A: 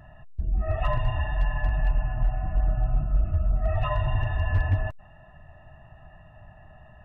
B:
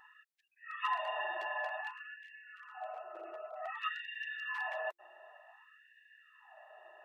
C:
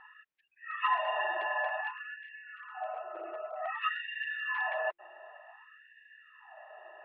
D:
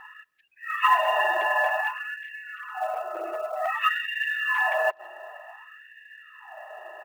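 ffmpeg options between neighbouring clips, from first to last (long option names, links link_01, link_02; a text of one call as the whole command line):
ffmpeg -i in.wav -af "afftfilt=real='re*gte(b*sr/1024,330*pow(1600/330,0.5+0.5*sin(2*PI*0.54*pts/sr)))':imag='im*gte(b*sr/1024,330*pow(1600/330,0.5+0.5*sin(2*PI*0.54*pts/sr)))':win_size=1024:overlap=0.75,volume=-1dB" out.wav
ffmpeg -i in.wav -af "lowpass=frequency=3000:width=0.5412,lowpass=frequency=3000:width=1.3066,volume=5.5dB" out.wav
ffmpeg -i in.wav -filter_complex "[0:a]acrusher=bits=7:mode=log:mix=0:aa=0.000001,asplit=2[link_01][link_02];[link_02]adelay=170,highpass=300,lowpass=3400,asoftclip=type=hard:threshold=-26.5dB,volume=-29dB[link_03];[link_01][link_03]amix=inputs=2:normalize=0,volume=9dB" out.wav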